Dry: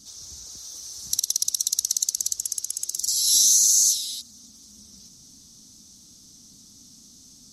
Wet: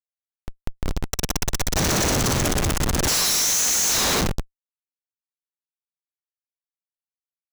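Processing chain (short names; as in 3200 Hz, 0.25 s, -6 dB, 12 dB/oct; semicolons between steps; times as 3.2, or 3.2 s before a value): Schroeder reverb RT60 1.8 s, combs from 33 ms, DRR 7.5 dB; 1.06–1.76 level quantiser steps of 14 dB; Schmitt trigger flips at -28 dBFS; gain +6 dB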